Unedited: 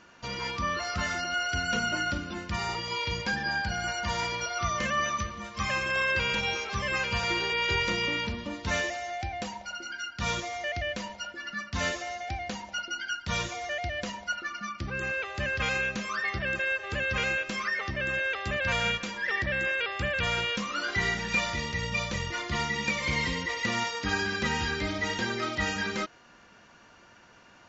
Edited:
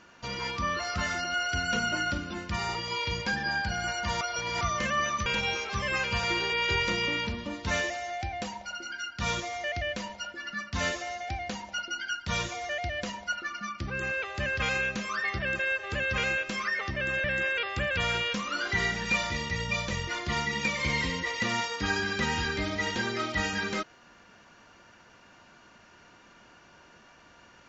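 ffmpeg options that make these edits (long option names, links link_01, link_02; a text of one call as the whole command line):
ffmpeg -i in.wav -filter_complex "[0:a]asplit=5[link_01][link_02][link_03][link_04][link_05];[link_01]atrim=end=4.212[link_06];[link_02]atrim=start=4.208:end=4.612,asetpts=PTS-STARTPTS,areverse[link_07];[link_03]atrim=start=4.608:end=5.262[link_08];[link_04]atrim=start=6.258:end=18.242[link_09];[link_05]atrim=start=19.468[link_10];[link_06][link_07]acrossfade=duration=0.004:curve1=hsin:curve2=hsin[link_11];[link_11][link_08]acrossfade=duration=0.004:curve1=hsin:curve2=hsin[link_12];[link_12][link_09]acrossfade=duration=0.004:curve1=hsin:curve2=hsin[link_13];[link_13][link_10]acrossfade=duration=0.004:curve1=hsin:curve2=hsin" out.wav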